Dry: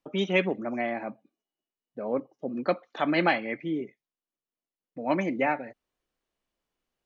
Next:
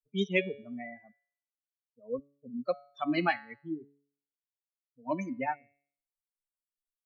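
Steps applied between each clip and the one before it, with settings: expander on every frequency bin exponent 3; bass shelf 85 Hz +6 dB; de-hum 141.7 Hz, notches 34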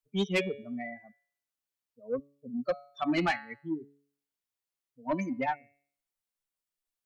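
saturation -24.5 dBFS, distortion -12 dB; trim +3.5 dB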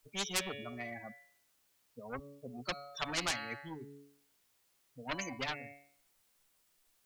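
spectrum-flattening compressor 4:1; trim +5 dB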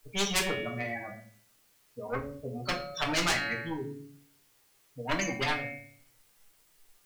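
in parallel at -9 dB: wavefolder -33 dBFS; on the sum: simulated room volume 40 m³, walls mixed, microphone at 0.49 m; trim +3.5 dB

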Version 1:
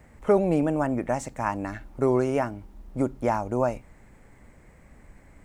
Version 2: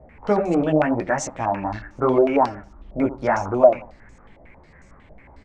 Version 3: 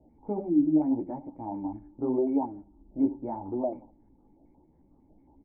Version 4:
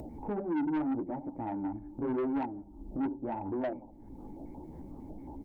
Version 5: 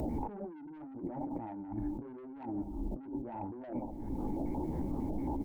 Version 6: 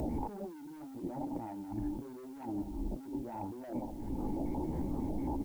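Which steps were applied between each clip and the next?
feedback delay 82 ms, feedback 30%, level -14.5 dB; chorus voices 2, 0.85 Hz, delay 15 ms, depth 4.3 ms; step-sequenced low-pass 11 Hz 650–6300 Hz; trim +5.5 dB
short-mantissa float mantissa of 4-bit; time-frequency box 0.49–0.76 s, 390–2600 Hz -18 dB; cascade formant filter u
upward compressor, threshold -30 dBFS; saturation -28 dBFS, distortion -7 dB
compressor with a negative ratio -44 dBFS, ratio -1; trim +4 dB
added noise white -67 dBFS

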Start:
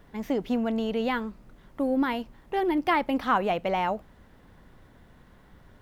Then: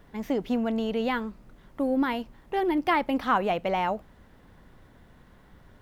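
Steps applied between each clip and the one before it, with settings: no audible change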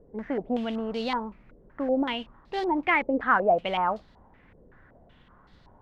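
modulation noise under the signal 21 dB; step-sequenced low-pass 5.3 Hz 480–4300 Hz; trim -3.5 dB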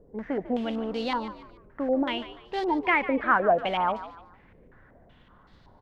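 frequency-shifting echo 147 ms, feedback 35%, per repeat +61 Hz, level -14 dB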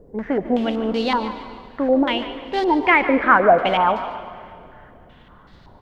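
reverberation RT60 2.3 s, pre-delay 88 ms, DRR 12.5 dB; trim +8 dB

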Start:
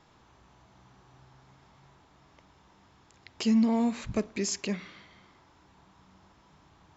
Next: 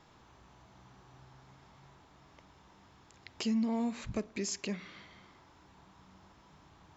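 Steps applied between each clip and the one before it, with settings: compression 1.5:1, threshold -42 dBFS, peak gain reduction 8 dB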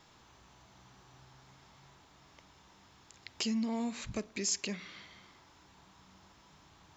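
treble shelf 2.3 kHz +9 dB; trim -2.5 dB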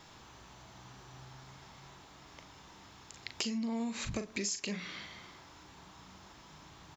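doubling 39 ms -9 dB; compression 12:1, threshold -38 dBFS, peak gain reduction 11 dB; trim +5.5 dB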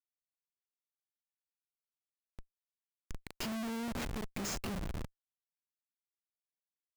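Schmitt trigger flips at -36.5 dBFS; trim +5.5 dB

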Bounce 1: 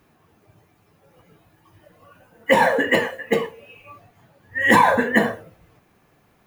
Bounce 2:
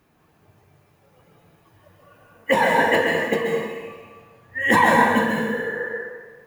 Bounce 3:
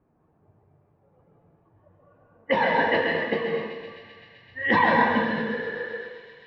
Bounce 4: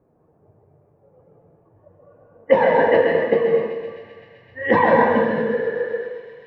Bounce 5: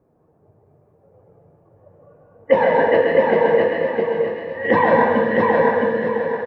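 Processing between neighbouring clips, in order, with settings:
spectral replace 5.15–5.85 s, 310–2100 Hz before; plate-style reverb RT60 1.4 s, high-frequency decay 0.9×, pre-delay 115 ms, DRR 0 dB; trim -3 dB
level-controlled noise filter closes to 880 Hz, open at -13.5 dBFS; steep low-pass 4.9 kHz 48 dB/octave; feedback echo behind a high-pass 129 ms, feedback 85%, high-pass 3.6 kHz, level -8.5 dB; trim -4 dB
graphic EQ 125/500/4000 Hz +4/+10/-9 dB; trim +1 dB
feedback delay 663 ms, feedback 33%, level -3 dB

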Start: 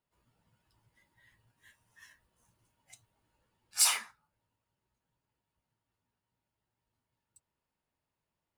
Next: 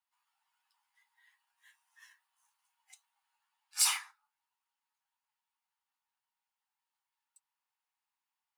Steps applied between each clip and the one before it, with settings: Chebyshev high-pass 770 Hz, order 6; trim -1.5 dB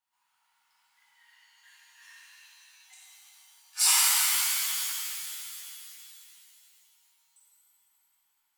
pitch-shifted reverb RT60 2.9 s, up +7 st, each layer -2 dB, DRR -8 dB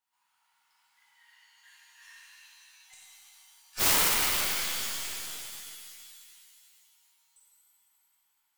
tracing distortion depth 0.3 ms

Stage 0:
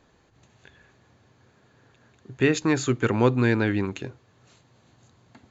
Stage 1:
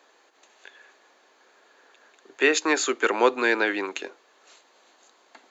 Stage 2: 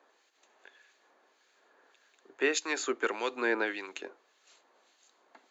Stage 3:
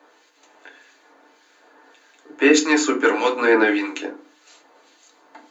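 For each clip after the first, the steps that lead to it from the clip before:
Bessel high-pass 540 Hz, order 6; trim +6 dB
harmonic tremolo 1.7 Hz, crossover 1.9 kHz; trim -5 dB
FDN reverb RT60 0.34 s, low-frequency decay 1.55×, high-frequency decay 0.6×, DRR -1 dB; trim +9 dB

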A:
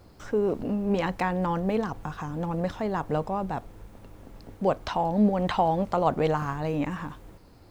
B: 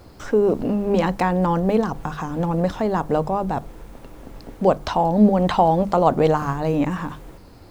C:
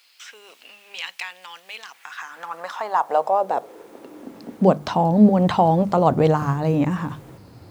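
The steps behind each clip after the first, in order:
hum notches 50/100/150/200 Hz; dynamic bell 2.2 kHz, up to -5 dB, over -41 dBFS, Q 0.8; trim +8 dB
high-pass sweep 2.7 kHz -> 110 Hz, 1.75–5.22 s; trim -1 dB

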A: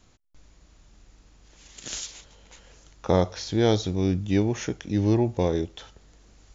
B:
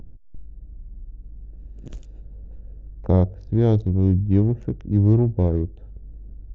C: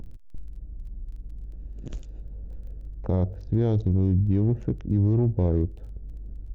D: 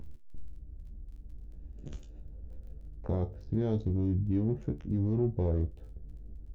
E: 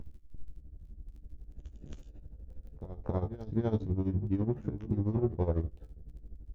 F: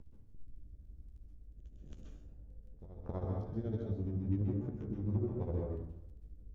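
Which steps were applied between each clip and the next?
local Wiener filter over 41 samples; tilt EQ -4.5 dB/octave; upward compressor, threshold -26 dBFS; trim -5.5 dB
peak limiter -14.5 dBFS, peak gain reduction 9 dB; crackle 11 per s -48 dBFS; trim +1 dB
feedback comb 73 Hz, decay 0.18 s, harmonics all, mix 90%
reverse echo 273 ms -12.5 dB; tremolo 12 Hz, depth 76%; dynamic bell 1.1 kHz, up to +8 dB, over -57 dBFS, Q 1.1; trim +1.5 dB
rotary cabinet horn 0.85 Hz, later 6.3 Hz, at 3.47 s; plate-style reverb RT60 0.74 s, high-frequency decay 0.55×, pre-delay 115 ms, DRR -0.5 dB; trim -7.5 dB

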